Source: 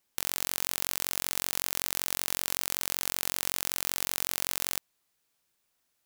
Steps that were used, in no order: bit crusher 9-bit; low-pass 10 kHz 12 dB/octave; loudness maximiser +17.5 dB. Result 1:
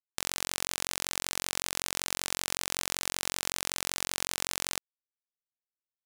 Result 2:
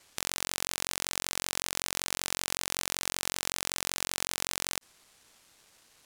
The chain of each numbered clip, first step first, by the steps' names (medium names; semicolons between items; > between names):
bit crusher > loudness maximiser > low-pass; loudness maximiser > bit crusher > low-pass